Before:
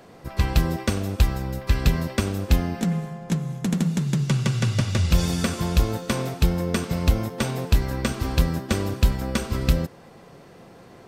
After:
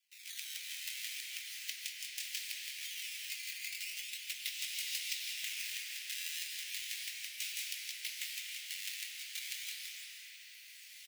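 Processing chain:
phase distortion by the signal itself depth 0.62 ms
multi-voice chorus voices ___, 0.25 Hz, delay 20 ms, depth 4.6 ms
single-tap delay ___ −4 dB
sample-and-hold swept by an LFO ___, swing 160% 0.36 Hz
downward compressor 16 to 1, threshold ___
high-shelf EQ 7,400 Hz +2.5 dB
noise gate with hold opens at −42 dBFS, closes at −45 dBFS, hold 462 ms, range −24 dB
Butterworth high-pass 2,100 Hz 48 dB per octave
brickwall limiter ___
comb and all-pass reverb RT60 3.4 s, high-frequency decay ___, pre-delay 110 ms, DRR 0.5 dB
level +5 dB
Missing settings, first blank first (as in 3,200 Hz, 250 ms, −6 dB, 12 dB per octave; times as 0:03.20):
2, 167 ms, 11×, −30 dBFS, −28.5 dBFS, 0.75×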